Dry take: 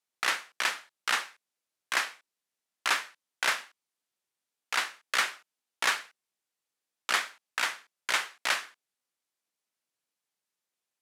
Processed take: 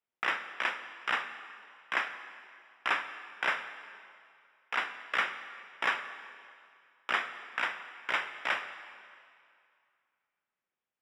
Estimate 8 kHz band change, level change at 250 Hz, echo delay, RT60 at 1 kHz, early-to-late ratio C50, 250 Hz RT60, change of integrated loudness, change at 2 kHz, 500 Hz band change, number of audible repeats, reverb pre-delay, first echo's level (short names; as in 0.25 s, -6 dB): -20.0 dB, +1.0 dB, none, 2.4 s, 10.5 dB, 2.1 s, -3.5 dB, -1.5 dB, 0.0 dB, none, 23 ms, none